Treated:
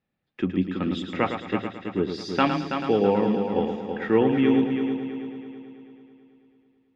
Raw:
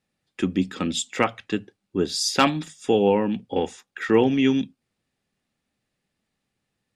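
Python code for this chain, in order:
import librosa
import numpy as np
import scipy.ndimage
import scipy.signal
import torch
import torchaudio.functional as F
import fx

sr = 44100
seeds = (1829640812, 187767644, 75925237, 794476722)

y = fx.air_absorb(x, sr, metres=300.0)
y = fx.echo_heads(y, sr, ms=109, heads='first and third', feedback_pct=59, wet_db=-8)
y = y * 10.0 ** (-1.5 / 20.0)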